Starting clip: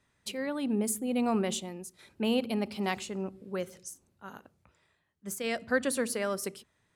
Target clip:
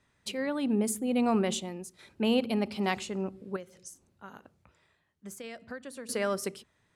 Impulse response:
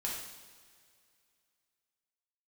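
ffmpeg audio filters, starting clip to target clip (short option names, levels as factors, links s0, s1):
-filter_complex "[0:a]highshelf=f=12000:g=-10.5,asettb=1/sr,asplit=3[s0][s1][s2];[s0]atrim=end=3.564[s3];[s1]atrim=start=3.56:end=6.09,asetpts=PTS-STARTPTS,afade=t=in:d=0.004:c=qsin,afade=t=out:st=2.526:d=0.004:c=qsin,acompressor=threshold=0.00631:ratio=4[s4];[s2]atrim=start=6.086[s5];[s3][s4]acrossfade=d=0.004:c1=hsin:c2=qsin[s6];[s6][s5]acrossfade=d=0.004:c1=qsin:c2=hsin,volume=1.26"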